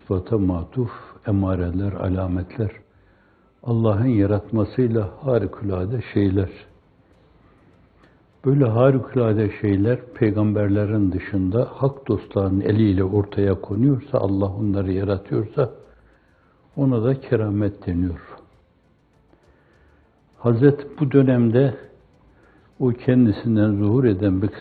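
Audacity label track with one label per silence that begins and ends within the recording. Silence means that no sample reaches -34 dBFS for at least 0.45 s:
2.770000	3.640000	silence
6.600000	8.440000	silence
15.750000	16.770000	silence
18.350000	20.420000	silence
21.850000	22.800000	silence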